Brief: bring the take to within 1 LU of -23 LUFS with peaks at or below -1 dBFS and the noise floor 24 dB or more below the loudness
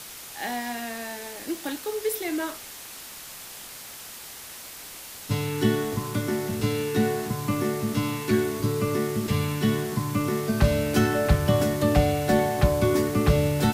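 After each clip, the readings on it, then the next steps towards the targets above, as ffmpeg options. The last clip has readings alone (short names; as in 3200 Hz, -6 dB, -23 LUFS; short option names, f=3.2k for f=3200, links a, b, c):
noise floor -41 dBFS; noise floor target -50 dBFS; loudness -25.5 LUFS; peak -6.5 dBFS; loudness target -23.0 LUFS
-> -af "afftdn=nr=9:nf=-41"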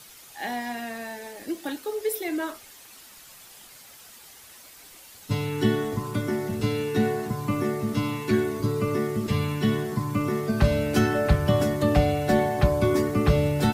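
noise floor -49 dBFS; noise floor target -50 dBFS
-> -af "afftdn=nr=6:nf=-49"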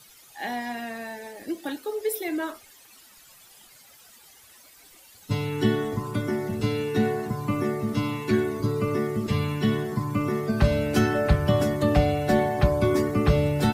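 noise floor -53 dBFS; loudness -25.5 LUFS; peak -7.0 dBFS; loudness target -23.0 LUFS
-> -af "volume=2.5dB"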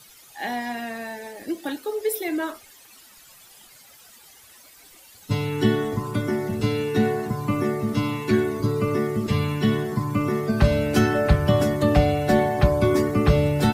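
loudness -23.0 LUFS; peak -4.5 dBFS; noise floor -50 dBFS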